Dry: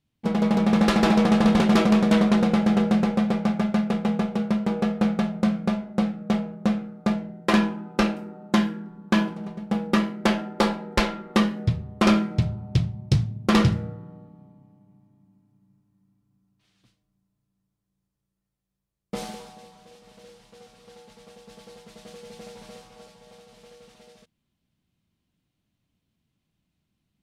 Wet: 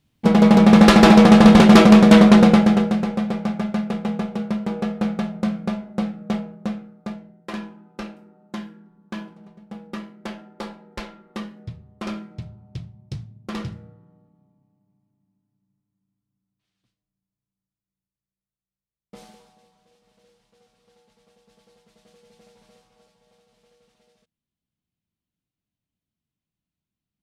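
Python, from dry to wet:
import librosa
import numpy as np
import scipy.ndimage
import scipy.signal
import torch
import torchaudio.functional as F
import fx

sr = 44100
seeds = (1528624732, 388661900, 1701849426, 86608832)

y = fx.gain(x, sr, db=fx.line((2.49, 9.0), (2.97, -1.0), (6.35, -1.0), (7.46, -12.0)))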